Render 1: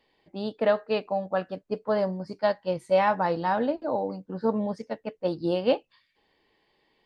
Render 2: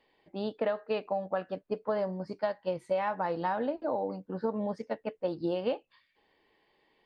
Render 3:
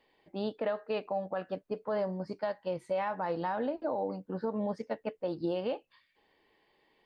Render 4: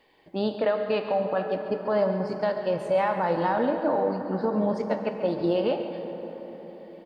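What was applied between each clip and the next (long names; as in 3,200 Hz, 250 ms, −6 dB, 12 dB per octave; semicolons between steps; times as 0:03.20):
bass and treble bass −4 dB, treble −8 dB; downward compressor 6 to 1, threshold −27 dBFS, peak gain reduction 10 dB
brickwall limiter −23.5 dBFS, peak gain reduction 6.5 dB
single-tap delay 139 ms −12.5 dB; dense smooth reverb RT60 4.9 s, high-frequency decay 0.45×, DRR 6 dB; level +7.5 dB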